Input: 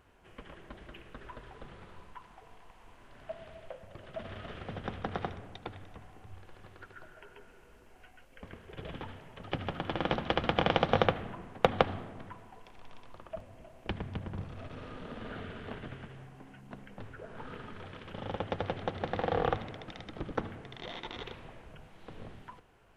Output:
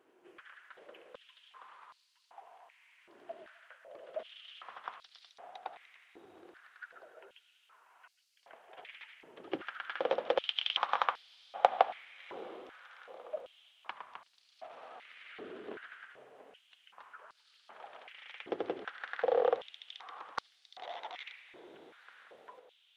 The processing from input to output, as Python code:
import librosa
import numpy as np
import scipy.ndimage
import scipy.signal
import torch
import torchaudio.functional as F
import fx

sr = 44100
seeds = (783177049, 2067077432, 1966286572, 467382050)

y = fx.vibrato(x, sr, rate_hz=11.0, depth_cents=84.0)
y = fx.echo_diffused(y, sr, ms=696, feedback_pct=51, wet_db=-15.5)
y = fx.filter_held_highpass(y, sr, hz=2.6, low_hz=350.0, high_hz=4500.0)
y = F.gain(torch.from_numpy(y), -6.5).numpy()